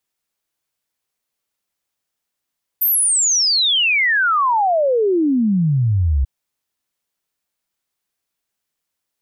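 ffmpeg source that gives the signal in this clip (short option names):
-f lavfi -i "aevalsrc='0.224*clip(min(t,3.44-t)/0.01,0,1)*sin(2*PI*14000*3.44/log(63/14000)*(exp(log(63/14000)*t/3.44)-1))':d=3.44:s=44100"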